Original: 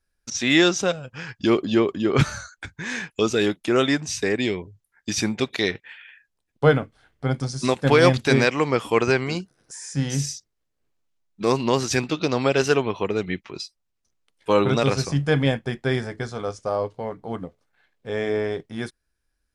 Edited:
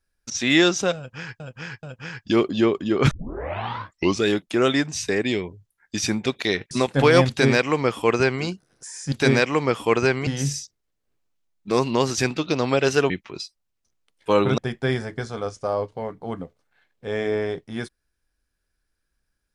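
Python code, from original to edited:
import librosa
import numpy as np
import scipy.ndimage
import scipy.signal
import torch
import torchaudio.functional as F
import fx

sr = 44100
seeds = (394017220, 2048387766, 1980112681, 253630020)

y = fx.edit(x, sr, fx.repeat(start_s=0.97, length_s=0.43, count=3),
    fx.tape_start(start_s=2.25, length_s=1.15),
    fx.cut(start_s=5.85, length_s=1.74),
    fx.duplicate(start_s=8.17, length_s=1.15, to_s=10.0),
    fx.cut(start_s=12.83, length_s=0.47),
    fx.cut(start_s=14.78, length_s=0.82), tone=tone)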